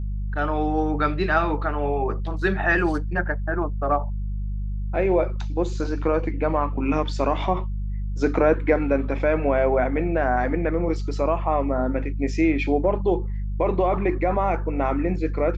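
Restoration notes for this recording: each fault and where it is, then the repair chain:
mains hum 50 Hz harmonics 4 −27 dBFS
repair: hum removal 50 Hz, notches 4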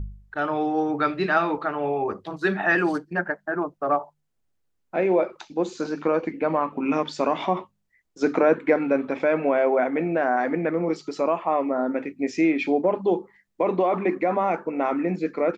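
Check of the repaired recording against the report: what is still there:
none of them is left

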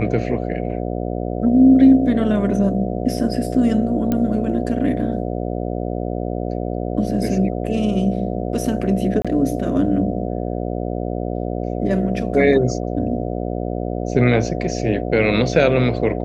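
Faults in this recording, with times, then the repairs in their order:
mains buzz 60 Hz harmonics 12 −24 dBFS
0:04.12: click −9 dBFS
0:09.22–0:09.25: drop-out 26 ms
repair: click removal
hum removal 60 Hz, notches 12
repair the gap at 0:09.22, 26 ms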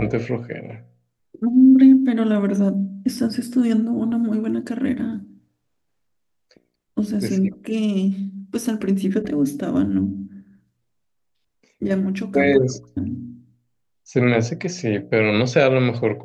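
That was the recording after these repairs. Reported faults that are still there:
none of them is left

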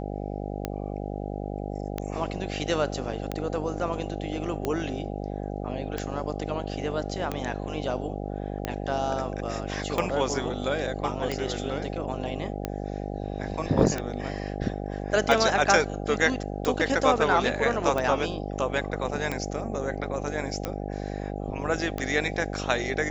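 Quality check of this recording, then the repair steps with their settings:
mains buzz 50 Hz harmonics 16 −33 dBFS
scratch tick 45 rpm −14 dBFS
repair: click removal
hum removal 50 Hz, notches 16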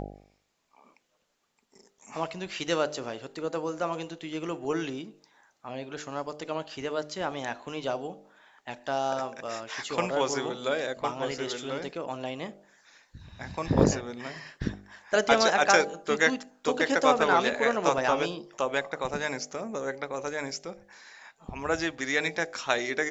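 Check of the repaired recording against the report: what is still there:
none of them is left

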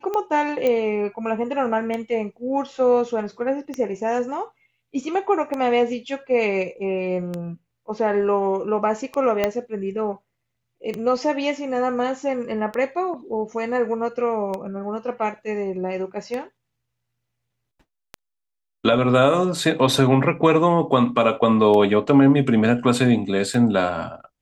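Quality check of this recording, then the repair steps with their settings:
scratch tick 33 1/3 rpm −15 dBFS
0:00.67: click −11 dBFS
0:09.44: click −7 dBFS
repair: click removal

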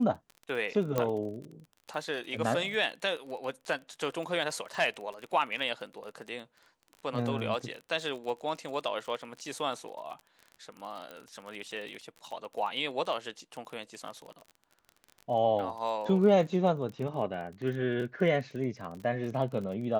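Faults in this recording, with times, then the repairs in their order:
surface crackle 28 per second −38 dBFS
0:00.98: click −15 dBFS
0:11.11: click −28 dBFS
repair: click removal

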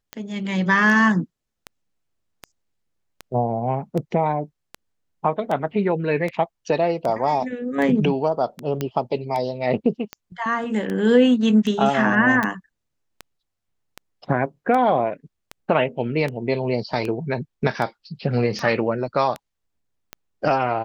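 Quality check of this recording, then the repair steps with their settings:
scratch tick 78 rpm −15 dBFS
0:08.81: click −11 dBFS
0:12.43: click −10 dBFS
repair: click removal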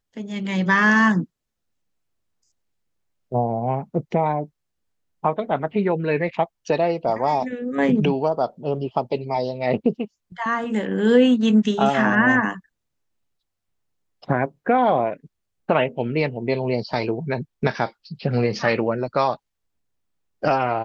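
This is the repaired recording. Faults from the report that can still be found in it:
none of them is left

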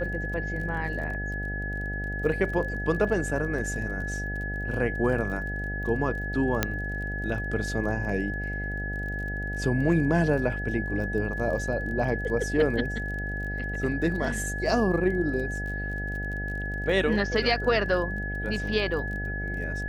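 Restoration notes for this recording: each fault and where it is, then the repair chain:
mains buzz 50 Hz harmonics 16 −33 dBFS
surface crackle 29 per second −36 dBFS
whistle 1,700 Hz −33 dBFS
0:06.63: click −7 dBFS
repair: click removal
hum removal 50 Hz, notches 16
notch filter 1,700 Hz, Q 30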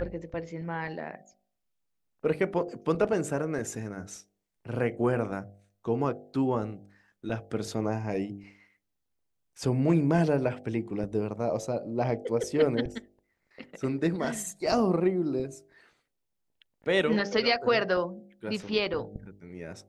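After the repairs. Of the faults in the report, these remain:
0:06.63: click

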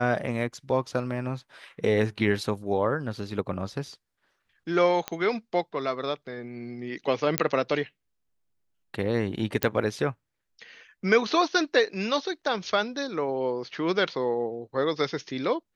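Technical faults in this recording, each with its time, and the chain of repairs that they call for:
0:05.08: click −13 dBFS
0:07.38: click −4 dBFS
0:09.63: click −5 dBFS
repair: click removal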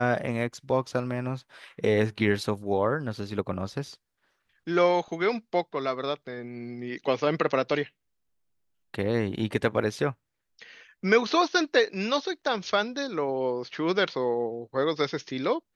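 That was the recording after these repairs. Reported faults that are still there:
none of them is left

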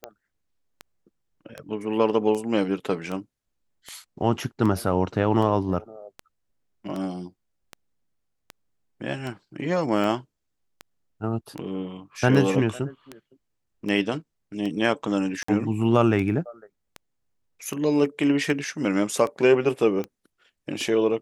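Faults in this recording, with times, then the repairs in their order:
scratch tick 78 rpm −19 dBFS
0:15.43–0:15.48: drop-out 54 ms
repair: click removal
repair the gap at 0:15.43, 54 ms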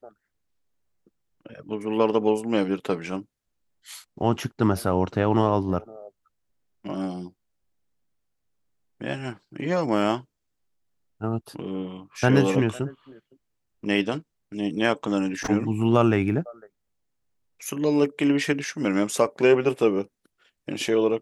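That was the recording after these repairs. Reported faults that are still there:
none of them is left

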